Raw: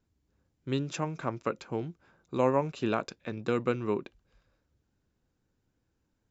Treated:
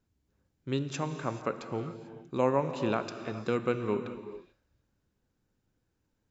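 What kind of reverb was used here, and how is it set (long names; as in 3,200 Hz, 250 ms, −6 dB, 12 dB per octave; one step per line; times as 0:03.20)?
reverb whose tail is shaped and stops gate 470 ms flat, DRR 8.5 dB
level −1 dB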